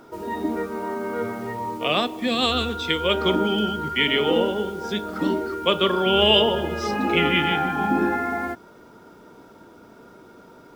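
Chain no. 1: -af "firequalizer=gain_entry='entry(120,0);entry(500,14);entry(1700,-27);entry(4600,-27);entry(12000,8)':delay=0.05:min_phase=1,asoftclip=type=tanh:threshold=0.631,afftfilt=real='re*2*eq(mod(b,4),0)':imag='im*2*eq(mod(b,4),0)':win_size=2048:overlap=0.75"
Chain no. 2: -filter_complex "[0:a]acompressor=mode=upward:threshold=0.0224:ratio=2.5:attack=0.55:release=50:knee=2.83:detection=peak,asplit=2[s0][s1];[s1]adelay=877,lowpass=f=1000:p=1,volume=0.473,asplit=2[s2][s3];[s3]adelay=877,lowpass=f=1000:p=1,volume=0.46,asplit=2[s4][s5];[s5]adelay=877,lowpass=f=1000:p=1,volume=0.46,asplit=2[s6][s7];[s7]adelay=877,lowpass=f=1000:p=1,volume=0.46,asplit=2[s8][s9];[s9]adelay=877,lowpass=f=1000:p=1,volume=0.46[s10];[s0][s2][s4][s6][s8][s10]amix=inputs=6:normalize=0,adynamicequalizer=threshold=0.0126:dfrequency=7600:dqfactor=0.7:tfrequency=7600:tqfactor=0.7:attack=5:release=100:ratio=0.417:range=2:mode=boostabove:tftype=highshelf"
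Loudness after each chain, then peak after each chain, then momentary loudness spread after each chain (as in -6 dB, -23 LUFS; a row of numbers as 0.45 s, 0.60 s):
-19.5 LUFS, -22.0 LUFS; -3.5 dBFS, -5.0 dBFS; 14 LU, 17 LU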